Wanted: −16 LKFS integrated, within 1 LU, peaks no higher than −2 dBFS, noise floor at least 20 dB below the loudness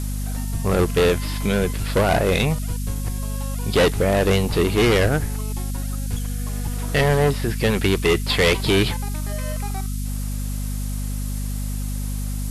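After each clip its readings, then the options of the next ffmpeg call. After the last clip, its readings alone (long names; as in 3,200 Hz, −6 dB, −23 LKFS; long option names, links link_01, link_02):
mains hum 50 Hz; hum harmonics up to 250 Hz; level of the hum −23 dBFS; background noise floor −26 dBFS; target noise floor −42 dBFS; integrated loudness −22.0 LKFS; sample peak −8.5 dBFS; target loudness −16.0 LKFS
→ -af "bandreject=frequency=50:width_type=h:width=4,bandreject=frequency=100:width_type=h:width=4,bandreject=frequency=150:width_type=h:width=4,bandreject=frequency=200:width_type=h:width=4,bandreject=frequency=250:width_type=h:width=4"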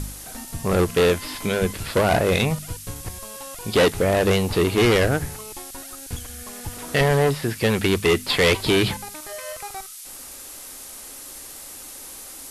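mains hum none found; background noise floor −39 dBFS; target noise floor −41 dBFS
→ -af "afftdn=noise_reduction=6:noise_floor=-39"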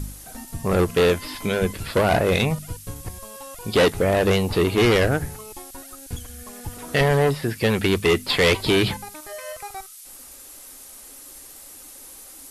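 background noise floor −43 dBFS; integrated loudness −20.5 LKFS; sample peak −8.5 dBFS; target loudness −16.0 LKFS
→ -af "volume=4.5dB"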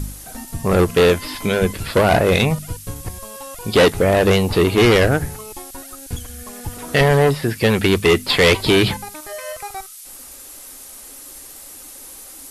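integrated loudness −16.0 LKFS; sample peak −4.0 dBFS; background noise floor −39 dBFS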